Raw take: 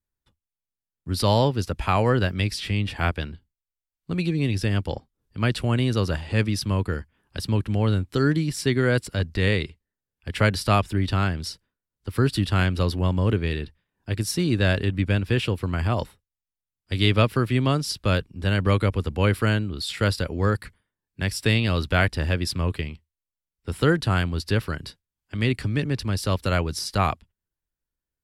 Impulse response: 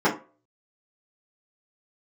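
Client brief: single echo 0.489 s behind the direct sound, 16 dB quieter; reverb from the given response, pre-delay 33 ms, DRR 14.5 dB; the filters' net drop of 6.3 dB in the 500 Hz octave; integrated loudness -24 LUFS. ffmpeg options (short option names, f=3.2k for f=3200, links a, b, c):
-filter_complex "[0:a]equalizer=f=500:t=o:g=-8,aecho=1:1:489:0.158,asplit=2[a][b];[1:a]atrim=start_sample=2205,adelay=33[c];[b][c]afir=irnorm=-1:irlink=0,volume=-32.5dB[d];[a][d]amix=inputs=2:normalize=0,volume=1dB"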